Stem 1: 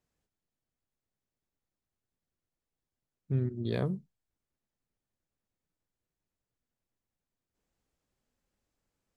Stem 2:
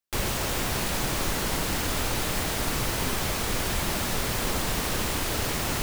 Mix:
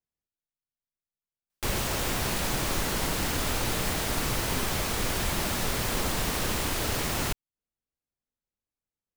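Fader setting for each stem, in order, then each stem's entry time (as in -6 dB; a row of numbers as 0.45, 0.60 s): -14.0, -1.0 dB; 0.00, 1.50 s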